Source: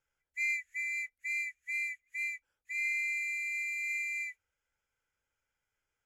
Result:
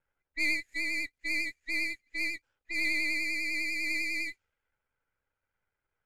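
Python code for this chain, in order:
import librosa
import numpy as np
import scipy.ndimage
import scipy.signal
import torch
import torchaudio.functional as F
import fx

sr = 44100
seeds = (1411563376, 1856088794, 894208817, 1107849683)

y = np.where(x < 0.0, 10.0 ** (-12.0 / 20.0) * x, x)
y = fx.vibrato(y, sr, rate_hz=10.0, depth_cents=51.0)
y = fx.env_lowpass(y, sr, base_hz=1900.0, full_db=-37.5)
y = y * librosa.db_to_amplitude(6.5)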